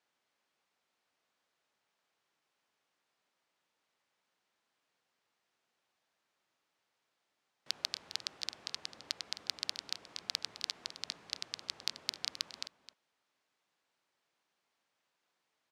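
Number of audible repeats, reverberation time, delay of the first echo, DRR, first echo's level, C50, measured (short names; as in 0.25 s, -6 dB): 1, none, 0.262 s, none, -13.5 dB, none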